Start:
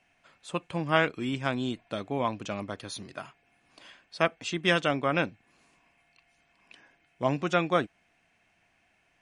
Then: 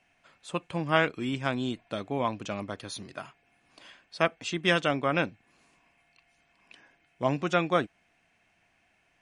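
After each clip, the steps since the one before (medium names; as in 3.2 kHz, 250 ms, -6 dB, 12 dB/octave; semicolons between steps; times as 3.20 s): no audible change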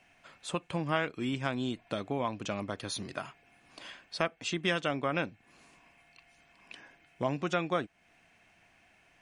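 compression 2:1, threshold -39 dBFS, peak gain reduction 12 dB; trim +4.5 dB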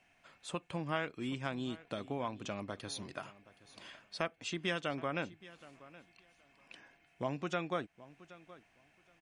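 feedback delay 772 ms, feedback 17%, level -19 dB; trim -5.5 dB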